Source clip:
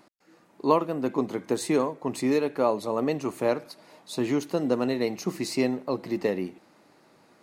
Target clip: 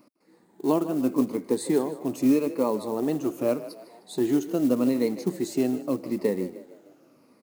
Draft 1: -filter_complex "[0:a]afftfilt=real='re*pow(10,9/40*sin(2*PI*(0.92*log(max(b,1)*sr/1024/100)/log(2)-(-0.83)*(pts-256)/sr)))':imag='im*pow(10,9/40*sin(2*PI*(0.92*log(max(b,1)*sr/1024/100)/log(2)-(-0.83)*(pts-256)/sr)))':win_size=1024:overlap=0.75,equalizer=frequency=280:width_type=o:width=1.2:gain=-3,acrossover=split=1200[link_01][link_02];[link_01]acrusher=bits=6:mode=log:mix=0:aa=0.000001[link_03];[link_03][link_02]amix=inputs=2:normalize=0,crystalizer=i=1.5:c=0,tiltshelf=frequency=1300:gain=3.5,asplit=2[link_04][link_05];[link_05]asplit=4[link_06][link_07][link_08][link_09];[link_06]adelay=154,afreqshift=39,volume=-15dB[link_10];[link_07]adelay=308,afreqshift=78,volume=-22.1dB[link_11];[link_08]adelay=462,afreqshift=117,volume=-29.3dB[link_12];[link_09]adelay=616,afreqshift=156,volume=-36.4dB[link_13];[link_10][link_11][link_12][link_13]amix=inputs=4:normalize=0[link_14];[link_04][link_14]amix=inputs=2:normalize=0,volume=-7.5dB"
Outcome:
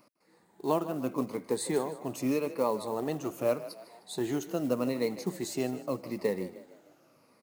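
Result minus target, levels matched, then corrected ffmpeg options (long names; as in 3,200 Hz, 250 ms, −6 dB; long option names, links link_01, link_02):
250 Hz band −3.0 dB
-filter_complex "[0:a]afftfilt=real='re*pow(10,9/40*sin(2*PI*(0.92*log(max(b,1)*sr/1024/100)/log(2)-(-0.83)*(pts-256)/sr)))':imag='im*pow(10,9/40*sin(2*PI*(0.92*log(max(b,1)*sr/1024/100)/log(2)-(-0.83)*(pts-256)/sr)))':win_size=1024:overlap=0.75,equalizer=frequency=280:width_type=o:width=1.2:gain=7,acrossover=split=1200[link_01][link_02];[link_01]acrusher=bits=6:mode=log:mix=0:aa=0.000001[link_03];[link_03][link_02]amix=inputs=2:normalize=0,crystalizer=i=1.5:c=0,tiltshelf=frequency=1300:gain=3.5,asplit=2[link_04][link_05];[link_05]asplit=4[link_06][link_07][link_08][link_09];[link_06]adelay=154,afreqshift=39,volume=-15dB[link_10];[link_07]adelay=308,afreqshift=78,volume=-22.1dB[link_11];[link_08]adelay=462,afreqshift=117,volume=-29.3dB[link_12];[link_09]adelay=616,afreqshift=156,volume=-36.4dB[link_13];[link_10][link_11][link_12][link_13]amix=inputs=4:normalize=0[link_14];[link_04][link_14]amix=inputs=2:normalize=0,volume=-7.5dB"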